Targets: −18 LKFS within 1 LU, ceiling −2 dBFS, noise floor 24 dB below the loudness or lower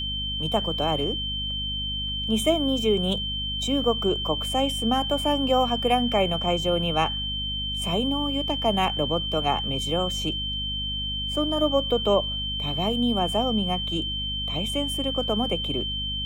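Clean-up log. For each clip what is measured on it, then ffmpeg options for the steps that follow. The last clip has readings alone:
mains hum 50 Hz; hum harmonics up to 250 Hz; level of the hum −32 dBFS; interfering tone 3,100 Hz; level of the tone −28 dBFS; integrated loudness −24.5 LKFS; sample peak −9.5 dBFS; target loudness −18.0 LKFS
→ -af "bandreject=frequency=50:width_type=h:width=6,bandreject=frequency=100:width_type=h:width=6,bandreject=frequency=150:width_type=h:width=6,bandreject=frequency=200:width_type=h:width=6,bandreject=frequency=250:width_type=h:width=6"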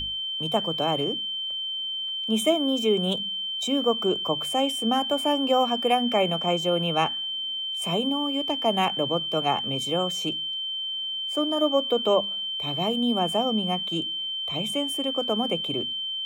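mains hum none found; interfering tone 3,100 Hz; level of the tone −28 dBFS
→ -af "bandreject=frequency=3100:width=30"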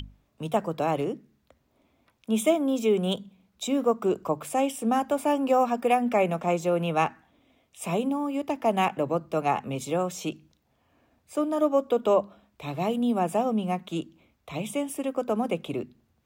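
interfering tone none found; integrated loudness −27.0 LKFS; sample peak −10.0 dBFS; target loudness −18.0 LKFS
→ -af "volume=9dB,alimiter=limit=-2dB:level=0:latency=1"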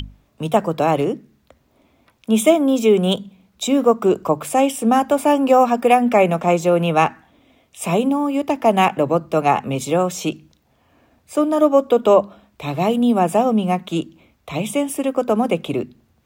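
integrated loudness −18.0 LKFS; sample peak −2.0 dBFS; background noise floor −61 dBFS

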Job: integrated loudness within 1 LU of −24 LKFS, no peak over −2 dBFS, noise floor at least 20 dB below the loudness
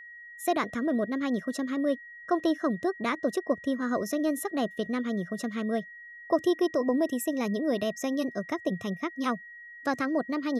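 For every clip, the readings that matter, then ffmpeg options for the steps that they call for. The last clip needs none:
interfering tone 1,900 Hz; level of the tone −44 dBFS; integrated loudness −29.5 LKFS; sample peak −14.0 dBFS; target loudness −24.0 LKFS
→ -af "bandreject=frequency=1900:width=30"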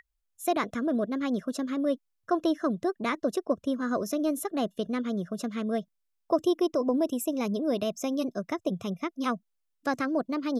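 interfering tone none found; integrated loudness −30.0 LKFS; sample peak −14.0 dBFS; target loudness −24.0 LKFS
→ -af "volume=6dB"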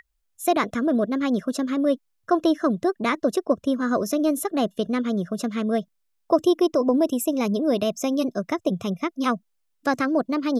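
integrated loudness −24.0 LKFS; sample peak −8.0 dBFS; background noise floor −72 dBFS

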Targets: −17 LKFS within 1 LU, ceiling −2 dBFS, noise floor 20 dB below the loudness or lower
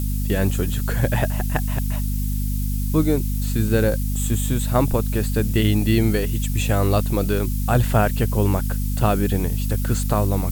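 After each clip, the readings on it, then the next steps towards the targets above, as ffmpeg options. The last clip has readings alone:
mains hum 50 Hz; hum harmonics up to 250 Hz; level of the hum −20 dBFS; background noise floor −23 dBFS; target noise floor −42 dBFS; integrated loudness −21.5 LKFS; sample peak −3.5 dBFS; target loudness −17.0 LKFS
→ -af "bandreject=frequency=50:width_type=h:width=6,bandreject=frequency=100:width_type=h:width=6,bandreject=frequency=150:width_type=h:width=6,bandreject=frequency=200:width_type=h:width=6,bandreject=frequency=250:width_type=h:width=6"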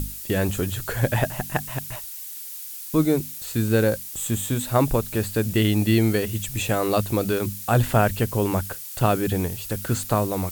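mains hum none found; background noise floor −36 dBFS; target noise floor −44 dBFS
→ -af "afftdn=noise_reduction=8:noise_floor=-36"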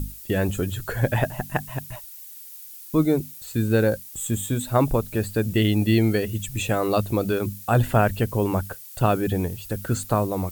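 background noise floor −42 dBFS; target noise floor −44 dBFS
→ -af "afftdn=noise_reduction=6:noise_floor=-42"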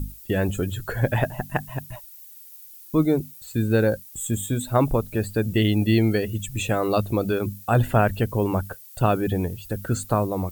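background noise floor −45 dBFS; integrated loudness −24.0 LKFS; sample peak −5.0 dBFS; target loudness −17.0 LKFS
→ -af "volume=7dB,alimiter=limit=-2dB:level=0:latency=1"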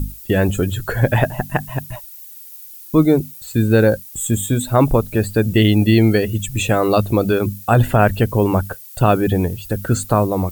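integrated loudness −17.0 LKFS; sample peak −2.0 dBFS; background noise floor −38 dBFS

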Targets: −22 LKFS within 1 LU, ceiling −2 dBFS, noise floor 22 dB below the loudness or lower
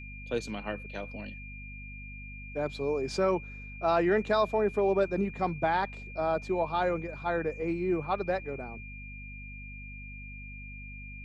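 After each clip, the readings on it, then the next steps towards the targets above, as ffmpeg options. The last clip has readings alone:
mains hum 50 Hz; hum harmonics up to 250 Hz; level of the hum −43 dBFS; interfering tone 2,400 Hz; level of the tone −45 dBFS; integrated loudness −30.5 LKFS; sample peak −14.5 dBFS; target loudness −22.0 LKFS
→ -af "bandreject=frequency=50:width_type=h:width=6,bandreject=frequency=100:width_type=h:width=6,bandreject=frequency=150:width_type=h:width=6,bandreject=frequency=200:width_type=h:width=6,bandreject=frequency=250:width_type=h:width=6"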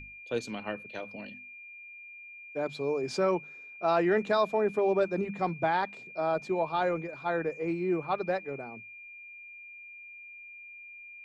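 mains hum none found; interfering tone 2,400 Hz; level of the tone −45 dBFS
→ -af "bandreject=frequency=2400:width=30"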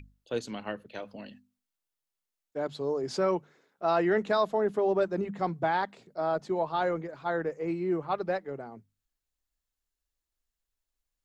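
interfering tone none found; integrated loudness −30.5 LKFS; sample peak −14.5 dBFS; target loudness −22.0 LKFS
→ -af "volume=8.5dB"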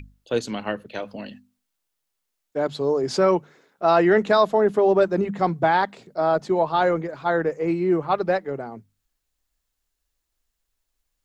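integrated loudness −22.0 LKFS; sample peak −6.0 dBFS; background noise floor −79 dBFS

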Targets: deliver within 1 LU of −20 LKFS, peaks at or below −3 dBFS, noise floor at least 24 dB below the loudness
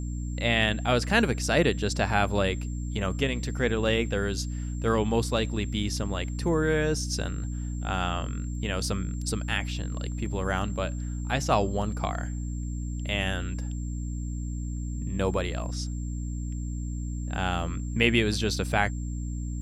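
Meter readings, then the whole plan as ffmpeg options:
mains hum 60 Hz; hum harmonics up to 300 Hz; level of the hum −30 dBFS; interfering tone 7,400 Hz; level of the tone −49 dBFS; integrated loudness −28.5 LKFS; sample peak −7.0 dBFS; target loudness −20.0 LKFS
→ -af "bandreject=frequency=60:width_type=h:width=4,bandreject=frequency=120:width_type=h:width=4,bandreject=frequency=180:width_type=h:width=4,bandreject=frequency=240:width_type=h:width=4,bandreject=frequency=300:width_type=h:width=4"
-af "bandreject=frequency=7400:width=30"
-af "volume=8.5dB,alimiter=limit=-3dB:level=0:latency=1"

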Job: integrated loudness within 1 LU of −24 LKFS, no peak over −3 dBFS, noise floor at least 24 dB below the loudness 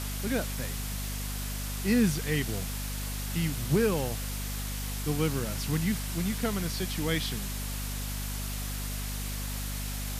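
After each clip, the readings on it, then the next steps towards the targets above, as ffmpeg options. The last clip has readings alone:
mains hum 50 Hz; hum harmonics up to 250 Hz; level of the hum −33 dBFS; background noise floor −34 dBFS; target noise floor −56 dBFS; integrated loudness −31.5 LKFS; sample peak −13.5 dBFS; target loudness −24.0 LKFS
→ -af "bandreject=frequency=50:width_type=h:width=4,bandreject=frequency=100:width_type=h:width=4,bandreject=frequency=150:width_type=h:width=4,bandreject=frequency=200:width_type=h:width=4,bandreject=frequency=250:width_type=h:width=4"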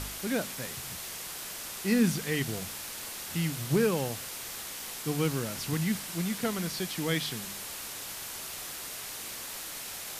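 mains hum none found; background noise floor −40 dBFS; target noise floor −57 dBFS
→ -af "afftdn=noise_reduction=17:noise_floor=-40"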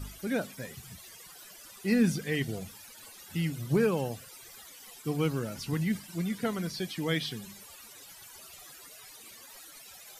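background noise floor −51 dBFS; target noise floor −56 dBFS
→ -af "afftdn=noise_reduction=6:noise_floor=-51"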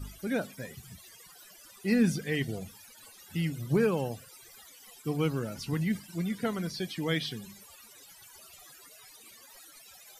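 background noise floor −54 dBFS; target noise floor −56 dBFS
→ -af "afftdn=noise_reduction=6:noise_floor=-54"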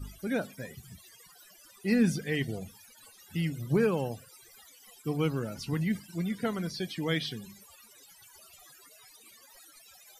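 background noise floor −57 dBFS; integrated loudness −31.5 LKFS; sample peak −14.0 dBFS; target loudness −24.0 LKFS
→ -af "volume=7.5dB"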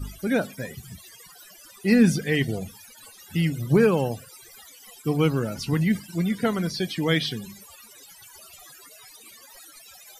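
integrated loudness −24.0 LKFS; sample peak −6.5 dBFS; background noise floor −49 dBFS

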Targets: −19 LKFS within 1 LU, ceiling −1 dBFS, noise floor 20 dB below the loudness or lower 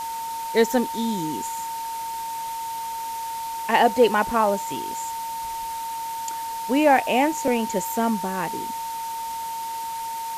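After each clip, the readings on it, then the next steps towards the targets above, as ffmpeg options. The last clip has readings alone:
interfering tone 910 Hz; level of the tone −28 dBFS; background noise floor −31 dBFS; target noise floor −45 dBFS; integrated loudness −24.5 LKFS; sample peak −6.5 dBFS; target loudness −19.0 LKFS
→ -af "bandreject=frequency=910:width=30"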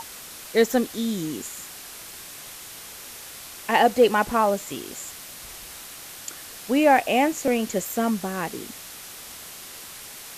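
interfering tone none found; background noise floor −41 dBFS; target noise floor −43 dBFS
→ -af "afftdn=noise_reduction=6:noise_floor=-41"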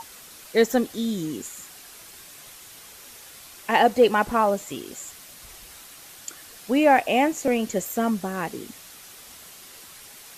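background noise floor −46 dBFS; integrated loudness −23.0 LKFS; sample peak −6.5 dBFS; target loudness −19.0 LKFS
→ -af "volume=4dB"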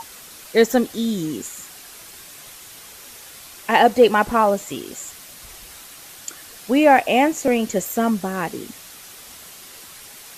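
integrated loudness −19.0 LKFS; sample peak −2.5 dBFS; background noise floor −42 dBFS

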